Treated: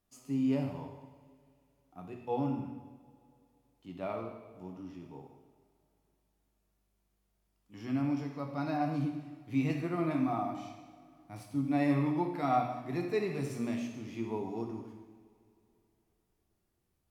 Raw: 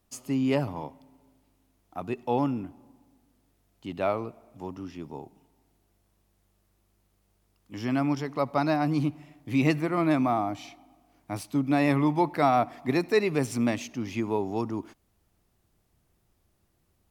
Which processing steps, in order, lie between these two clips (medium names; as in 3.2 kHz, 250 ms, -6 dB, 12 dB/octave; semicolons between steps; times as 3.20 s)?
harmonic-percussive split percussive -9 dB; two-slope reverb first 0.98 s, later 3.3 s, from -19 dB, DRR 1.5 dB; trim -8 dB